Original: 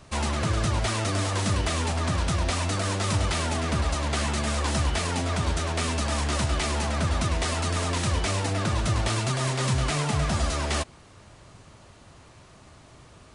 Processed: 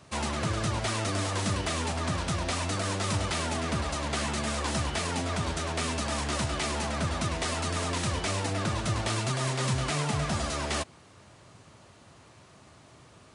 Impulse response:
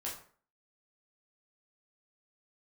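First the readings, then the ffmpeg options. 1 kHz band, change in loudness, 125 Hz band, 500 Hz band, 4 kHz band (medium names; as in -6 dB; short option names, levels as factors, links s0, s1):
-2.5 dB, -3.5 dB, -5.0 dB, -2.5 dB, -2.5 dB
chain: -af "highpass=91,volume=0.75"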